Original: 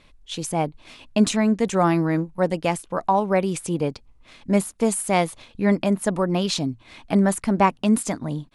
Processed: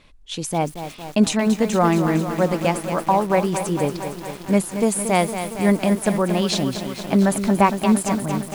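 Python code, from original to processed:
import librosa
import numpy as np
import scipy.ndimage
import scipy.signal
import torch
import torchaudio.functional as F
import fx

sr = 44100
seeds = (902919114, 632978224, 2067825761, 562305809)

y = fx.echo_crushed(x, sr, ms=229, feedback_pct=80, bits=6, wet_db=-9)
y = y * librosa.db_to_amplitude(1.5)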